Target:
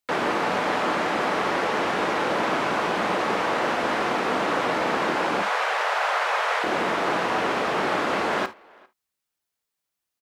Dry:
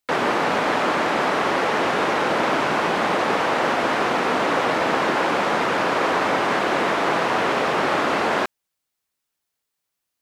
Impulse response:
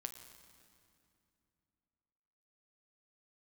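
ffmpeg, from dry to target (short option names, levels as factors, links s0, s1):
-filter_complex "[0:a]asettb=1/sr,asplit=3[s0][s1][s2];[s0]atrim=end=5.424[s3];[s1]atrim=start=5.42:end=6.64,asetpts=PTS-STARTPTS,afade=t=in:d=0.004:c=qsin,afade=t=out:st=1.216:d=0.004:c=qsin,afreqshift=280[s4];[s2]atrim=start=6.636[s5];[s3][s4]acrossfade=d=0.004:c1=hsin:c2=qsin[s6];[s6][s5]acrossfade=d=0.004:c1=qsin:c2=hsin,asplit=2[s7][s8];[s8]adelay=400,highpass=300,lowpass=3400,asoftclip=type=hard:threshold=0.158,volume=0.0501[s9];[s7][s9]amix=inputs=2:normalize=0[s10];[1:a]atrim=start_sample=2205,atrim=end_sample=3528[s11];[s10][s11]afir=irnorm=-1:irlink=0"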